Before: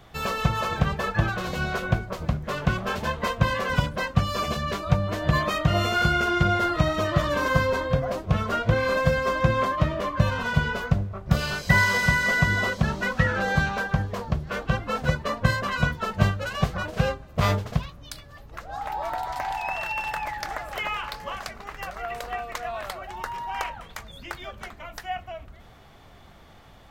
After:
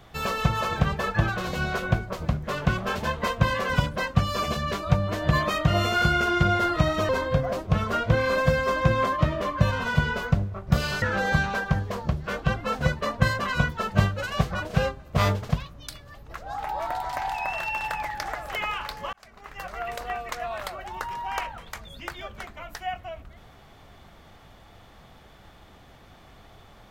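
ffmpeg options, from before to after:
-filter_complex "[0:a]asplit=4[a][b][c][d];[a]atrim=end=7.092[e];[b]atrim=start=7.678:end=11.612[f];[c]atrim=start=13.248:end=21.36,asetpts=PTS-STARTPTS,afade=t=out:st=8.108:d=0.004:c=hsin[g];[d]atrim=start=21.36,asetpts=PTS-STARTPTS,afade=t=in:d=0.63[h];[e][f]acrossfade=d=0.004:c1=hsin:c2=hsin[i];[g][h]concat=n=2:v=0:a=1[j];[i][j]acrossfade=d=0.004:c1=hsin:c2=hsin"

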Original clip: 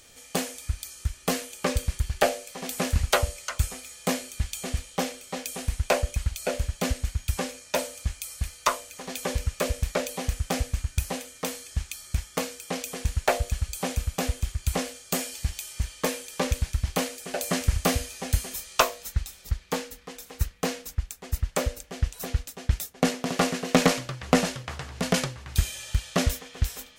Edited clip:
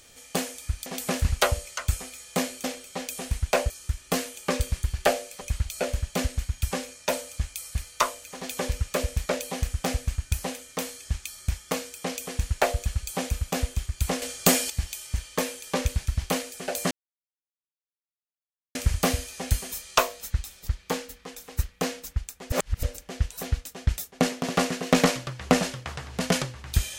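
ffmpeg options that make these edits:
-filter_complex "[0:a]asplit=10[a][b][c][d][e][f][g][h][i][j];[a]atrim=end=0.862[k];[b]atrim=start=2.568:end=4.352[l];[c]atrim=start=5.008:end=6.072[m];[d]atrim=start=0.858:end=2.572[n];[e]atrim=start=6.068:end=14.882[o];[f]atrim=start=14.878:end=15.362,asetpts=PTS-STARTPTS,volume=8.5dB[p];[g]atrim=start=15.358:end=17.57,asetpts=PTS-STARTPTS,afade=t=out:st=2.208:d=0.004:c=hsin,apad=pad_dur=1.84[q];[h]atrim=start=17.57:end=21.342,asetpts=PTS-STARTPTS,afade=t=in:d=0.004:c=hsin[r];[i]atrim=start=21.338:end=21.652,asetpts=PTS-STARTPTS,areverse[s];[j]atrim=start=21.648[t];[k][l]acrossfade=d=0.004:c1=hsin:c2=hsin[u];[u][m]acrossfade=d=0.004:c1=hsin:c2=hsin[v];[v][n]acrossfade=d=0.004:c1=hsin:c2=hsin[w];[w][o]acrossfade=d=0.004:c1=hsin:c2=hsin[x];[x][p]acrossfade=d=0.004:c1=hsin:c2=hsin[y];[q][r]concat=n=2:v=0:a=1[z];[y][z]acrossfade=d=0.004:c1=hsin:c2=hsin[aa];[aa][s]acrossfade=d=0.004:c1=hsin:c2=hsin[ab];[ab][t]acrossfade=d=0.004:c1=hsin:c2=hsin"

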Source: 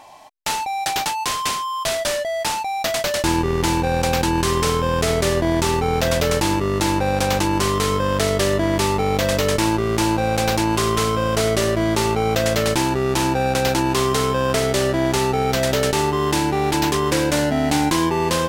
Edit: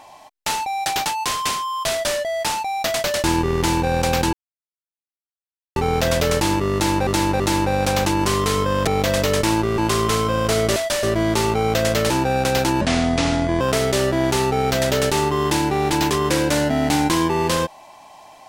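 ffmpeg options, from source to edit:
-filter_complex "[0:a]asplit=12[a][b][c][d][e][f][g][h][i][j][k][l];[a]atrim=end=4.33,asetpts=PTS-STARTPTS,afade=t=out:st=4.326:d=0.004:c=hsin[m];[b]atrim=start=4.33:end=5.76,asetpts=PTS-STARTPTS,volume=0[n];[c]atrim=start=5.76:end=7.072,asetpts=PTS-STARTPTS,afade=t=in:d=0.004:c=hsin[o];[d]atrim=start=6.738:end=7.072[p];[e]atrim=start=6.738:end=8.212[q];[f]atrim=start=9.018:end=9.932[r];[g]atrim=start=10.658:end=11.642[s];[h]atrim=start=1.908:end=2.182[t];[i]atrim=start=11.638:end=12.712[u];[j]atrim=start=13.198:end=13.914[v];[k]atrim=start=13.91:end=14.42,asetpts=PTS-STARTPTS,asetrate=28224,aresample=44100,atrim=end_sample=35142,asetpts=PTS-STARTPTS[w];[l]atrim=start=14.416[x];[m][n][o]concat=n=3:v=0:a=1[y];[y][p]acrossfade=d=0.004:c1=hsin:c2=hsin[z];[z][q]acrossfade=d=0.004:c1=hsin:c2=hsin[aa];[aa][r]acrossfade=d=0.004:c1=hsin:c2=hsin[ab];[ab][s]acrossfade=d=0.004:c1=hsin:c2=hsin[ac];[ac][t]acrossfade=d=0.004:c1=hsin:c2=hsin[ad];[ad][u]acrossfade=d=0.004:c1=hsin:c2=hsin[ae];[ae][v]acrossfade=d=0.004:c1=hsin:c2=hsin[af];[af][w]acrossfade=d=0.004:c1=hsin:c2=hsin[ag];[ag][x]acrossfade=d=0.004:c1=hsin:c2=hsin"

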